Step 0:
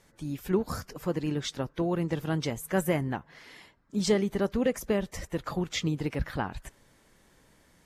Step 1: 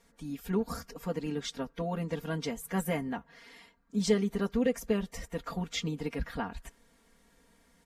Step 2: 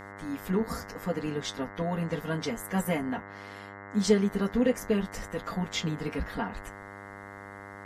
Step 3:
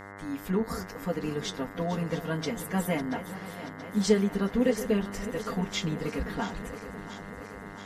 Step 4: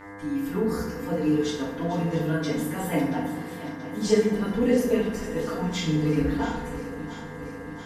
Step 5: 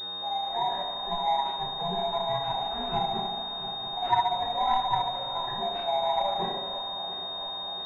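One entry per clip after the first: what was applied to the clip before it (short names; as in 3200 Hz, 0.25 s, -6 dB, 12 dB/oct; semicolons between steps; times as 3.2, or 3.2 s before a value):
comb 4.3 ms, depth 89%; gain -5.5 dB
flange 0.75 Hz, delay 8.5 ms, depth 3.8 ms, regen -52%; buzz 100 Hz, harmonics 21, -51 dBFS -1 dB/oct; gain +6.5 dB
regenerating reverse delay 0.34 s, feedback 81%, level -13.5 dB
FDN reverb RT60 0.93 s, low-frequency decay 1.45×, high-frequency decay 0.65×, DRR -7 dB; gain -5.5 dB
band-swap scrambler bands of 500 Hz; pulse-width modulation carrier 3700 Hz; gain -3.5 dB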